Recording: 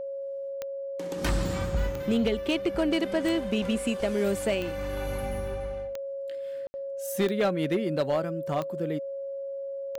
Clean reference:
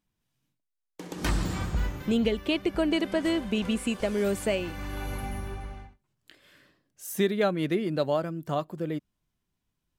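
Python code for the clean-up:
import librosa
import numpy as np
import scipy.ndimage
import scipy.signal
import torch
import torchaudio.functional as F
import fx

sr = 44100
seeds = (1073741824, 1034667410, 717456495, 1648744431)

y = fx.fix_declip(x, sr, threshold_db=-19.0)
y = fx.fix_declick_ar(y, sr, threshold=10.0)
y = fx.notch(y, sr, hz=550.0, q=30.0)
y = fx.fix_ambience(y, sr, seeds[0], print_start_s=8.99, print_end_s=9.49, start_s=6.67, end_s=6.74)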